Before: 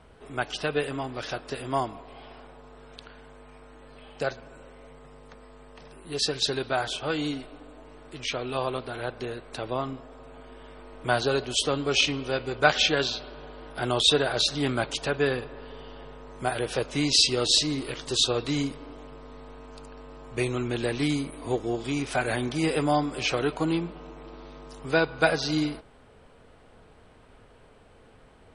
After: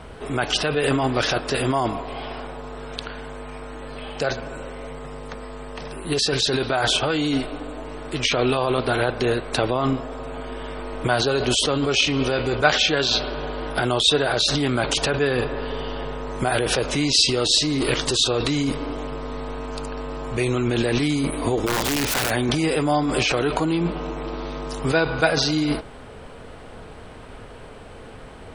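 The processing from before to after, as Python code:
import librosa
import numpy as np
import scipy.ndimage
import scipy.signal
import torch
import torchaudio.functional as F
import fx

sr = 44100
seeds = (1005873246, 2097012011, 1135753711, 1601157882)

p1 = fx.over_compress(x, sr, threshold_db=-33.0, ratio=-0.5)
p2 = x + F.gain(torch.from_numpy(p1), 3.0).numpy()
p3 = fx.overflow_wrap(p2, sr, gain_db=19.0, at=(21.66, 22.29), fade=0.02)
y = F.gain(torch.from_numpy(p3), 2.5).numpy()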